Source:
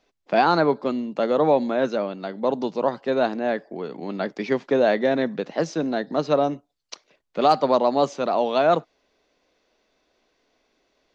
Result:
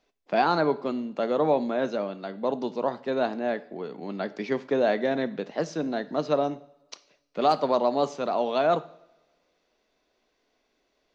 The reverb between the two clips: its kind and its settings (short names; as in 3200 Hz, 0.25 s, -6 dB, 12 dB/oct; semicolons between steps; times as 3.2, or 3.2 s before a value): two-slope reverb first 0.59 s, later 1.6 s, from -18 dB, DRR 13.5 dB; gain -4.5 dB